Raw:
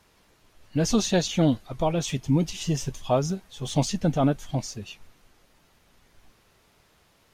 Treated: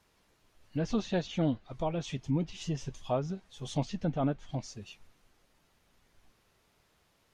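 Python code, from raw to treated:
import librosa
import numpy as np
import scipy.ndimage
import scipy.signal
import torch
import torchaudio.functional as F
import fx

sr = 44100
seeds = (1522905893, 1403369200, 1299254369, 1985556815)

y = fx.env_lowpass_down(x, sr, base_hz=3000.0, full_db=-20.0)
y = F.gain(torch.from_numpy(y), -8.0).numpy()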